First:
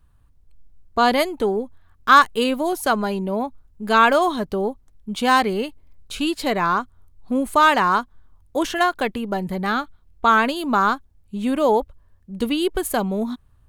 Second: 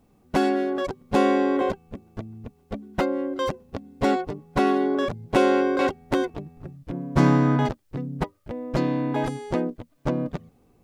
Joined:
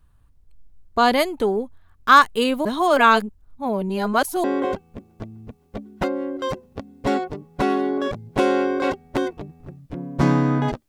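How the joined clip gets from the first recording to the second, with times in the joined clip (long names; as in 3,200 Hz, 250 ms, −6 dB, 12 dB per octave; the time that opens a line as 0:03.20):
first
0:02.65–0:04.44: reverse
0:04.44: continue with second from 0:01.41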